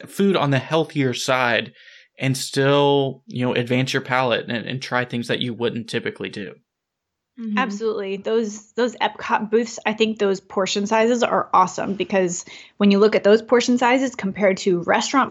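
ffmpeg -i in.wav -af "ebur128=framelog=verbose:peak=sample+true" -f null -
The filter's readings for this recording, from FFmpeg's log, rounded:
Integrated loudness:
  I:         -20.3 LUFS
  Threshold: -30.6 LUFS
Loudness range:
  LRA:         7.5 LU
  Threshold: -41.1 LUFS
  LRA low:   -25.8 LUFS
  LRA high:  -18.3 LUFS
Sample peak:
  Peak:       -2.7 dBFS
True peak:
  Peak:       -2.7 dBFS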